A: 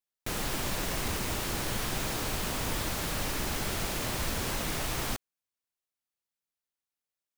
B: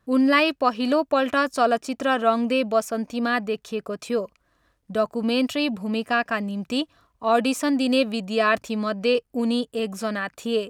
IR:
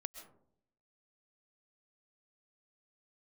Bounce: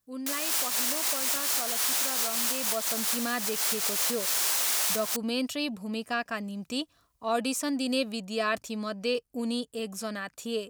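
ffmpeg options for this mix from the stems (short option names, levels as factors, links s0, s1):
-filter_complex "[0:a]highpass=780,volume=1.26[s0];[1:a]volume=0.376,afade=t=in:st=2.47:d=0.67:silence=0.316228,asplit=2[s1][s2];[s2]apad=whole_len=325250[s3];[s0][s3]sidechaincompress=threshold=0.0126:ratio=6:attack=6:release=129[s4];[s4][s1]amix=inputs=2:normalize=0,bass=f=250:g=1,treble=f=4000:g=10"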